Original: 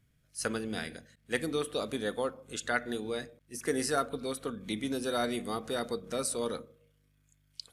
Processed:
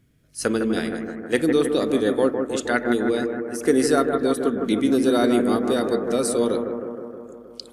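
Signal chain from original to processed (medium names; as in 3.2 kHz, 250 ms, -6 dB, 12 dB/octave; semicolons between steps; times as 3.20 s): peaking EQ 320 Hz +9.5 dB 1.3 oct; bucket-brigade echo 157 ms, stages 2048, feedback 69%, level -6 dB; trim +6 dB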